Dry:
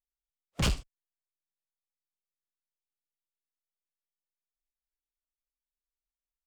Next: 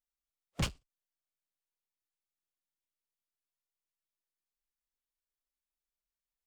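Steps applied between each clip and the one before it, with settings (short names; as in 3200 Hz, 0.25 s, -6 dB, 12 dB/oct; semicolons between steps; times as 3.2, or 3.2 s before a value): ending taper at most 270 dB/s; gain -2.5 dB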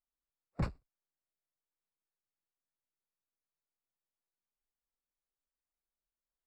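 running mean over 14 samples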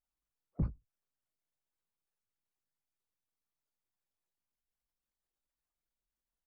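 formant sharpening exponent 2; doubler 19 ms -8 dB; gain +1 dB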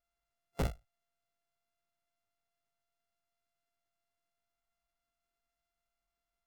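sample sorter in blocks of 64 samples; wavefolder -29 dBFS; gain +3.5 dB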